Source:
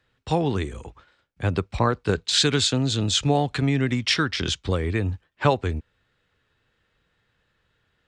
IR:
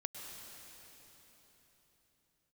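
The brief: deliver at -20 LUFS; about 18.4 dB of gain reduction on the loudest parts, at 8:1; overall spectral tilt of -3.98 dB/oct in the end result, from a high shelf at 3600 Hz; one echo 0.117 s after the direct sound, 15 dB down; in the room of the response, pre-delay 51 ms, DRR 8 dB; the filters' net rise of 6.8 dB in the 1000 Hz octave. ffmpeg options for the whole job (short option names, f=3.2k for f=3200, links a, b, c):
-filter_complex "[0:a]equalizer=f=1k:t=o:g=8.5,highshelf=f=3.6k:g=4.5,acompressor=threshold=-30dB:ratio=8,aecho=1:1:117:0.178,asplit=2[a][b];[1:a]atrim=start_sample=2205,adelay=51[c];[b][c]afir=irnorm=-1:irlink=0,volume=-7dB[d];[a][d]amix=inputs=2:normalize=0,volume=13.5dB"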